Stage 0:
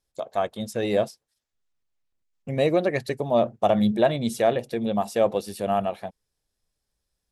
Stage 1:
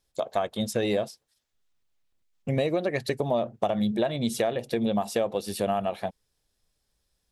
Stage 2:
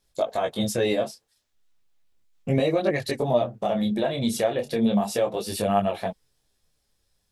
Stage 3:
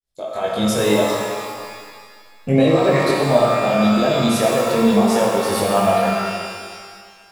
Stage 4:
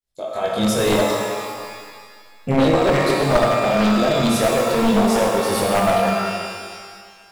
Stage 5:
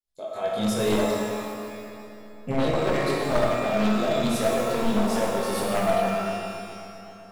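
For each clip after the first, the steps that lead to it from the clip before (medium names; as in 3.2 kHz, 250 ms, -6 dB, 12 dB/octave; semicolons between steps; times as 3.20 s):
peaking EQ 3.5 kHz +2.5 dB; compression 12:1, threshold -26 dBFS, peak gain reduction 12.5 dB; trim +4 dB
peak limiter -17 dBFS, peak gain reduction 8 dB; detune thickener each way 12 cents; trim +7.5 dB
fade-in on the opening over 0.63 s; pitch-shifted reverb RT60 1.9 s, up +12 st, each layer -8 dB, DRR -2 dB; trim +3.5 dB
one-sided wavefolder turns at -12.5 dBFS
bucket-brigade echo 131 ms, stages 2048, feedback 82%, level -15 dB; reverberation RT60 0.45 s, pre-delay 5 ms, DRR 5.5 dB; trim -8.5 dB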